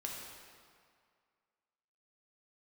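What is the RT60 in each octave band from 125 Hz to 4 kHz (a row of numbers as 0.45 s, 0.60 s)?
1.9 s, 1.9 s, 2.0 s, 2.2 s, 1.9 s, 1.6 s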